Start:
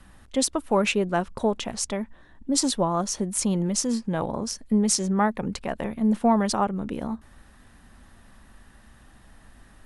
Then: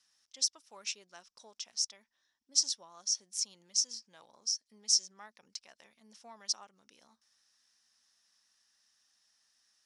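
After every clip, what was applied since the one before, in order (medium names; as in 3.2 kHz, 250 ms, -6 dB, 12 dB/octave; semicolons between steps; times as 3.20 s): band-pass filter 5.5 kHz, Q 6.4; trim +3.5 dB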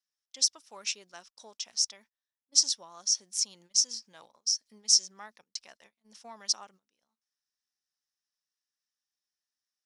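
gate -59 dBFS, range -24 dB; trim +5 dB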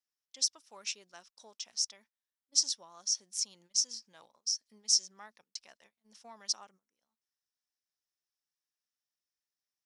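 time-frequency box 6.71–6.96 s, 2.4–5.3 kHz -12 dB; trim -4.5 dB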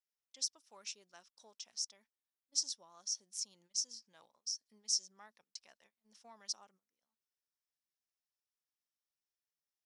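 dynamic bell 2 kHz, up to -6 dB, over -47 dBFS, Q 0.74; trim -6 dB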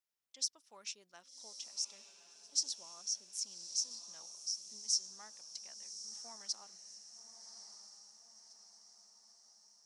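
echo that smears into a reverb 1156 ms, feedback 51%, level -10 dB; trim +1 dB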